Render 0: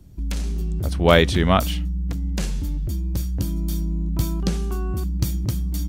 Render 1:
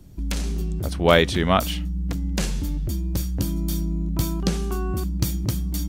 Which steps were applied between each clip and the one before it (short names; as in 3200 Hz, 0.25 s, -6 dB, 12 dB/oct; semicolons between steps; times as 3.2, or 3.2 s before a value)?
bell 63 Hz -5 dB 2.7 oct; in parallel at -2 dB: vocal rider within 5 dB 0.5 s; on the sum: gain -4 dB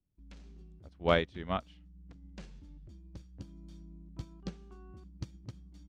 air absorption 120 m; upward expander 2.5:1, over -32 dBFS; gain -8.5 dB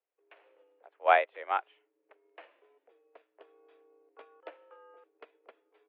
mistuned SSB +130 Hz 390–2600 Hz; gain +5 dB